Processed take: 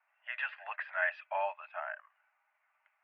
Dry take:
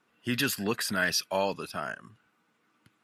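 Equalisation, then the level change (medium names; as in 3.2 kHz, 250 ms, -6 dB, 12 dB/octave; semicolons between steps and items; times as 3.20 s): rippled Chebyshev high-pass 590 Hz, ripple 6 dB; steep low-pass 2.4 kHz 36 dB/octave; 0.0 dB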